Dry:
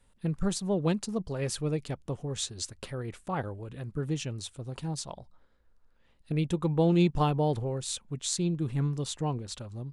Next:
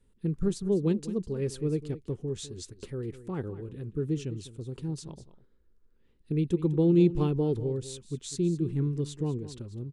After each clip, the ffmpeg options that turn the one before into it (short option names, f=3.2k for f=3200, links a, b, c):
-af "lowshelf=f=510:t=q:w=3:g=7.5,aecho=1:1:202:0.188,volume=-8dB"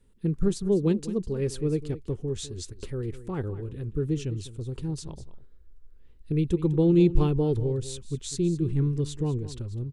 -af "asubboost=boost=4:cutoff=89,volume=3.5dB"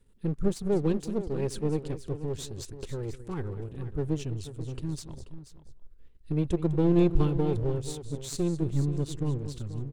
-af "aeval=exprs='if(lt(val(0),0),0.447*val(0),val(0))':c=same,aecho=1:1:484:0.224"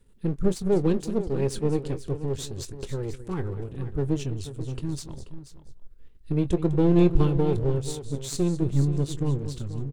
-filter_complex "[0:a]asplit=2[a][b];[b]adelay=22,volume=-13dB[c];[a][c]amix=inputs=2:normalize=0,volume=3.5dB"